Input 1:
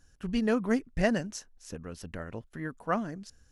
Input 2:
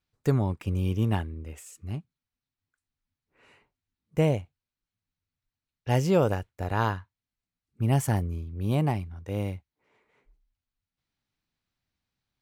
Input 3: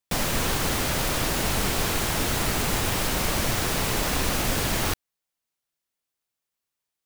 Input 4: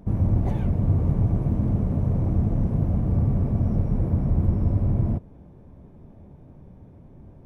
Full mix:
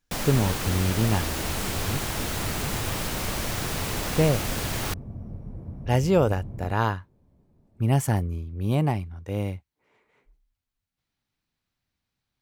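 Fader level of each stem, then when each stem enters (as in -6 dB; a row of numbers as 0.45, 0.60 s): -15.5, +2.0, -4.5, -15.0 dB; 0.00, 0.00, 0.00, 1.55 s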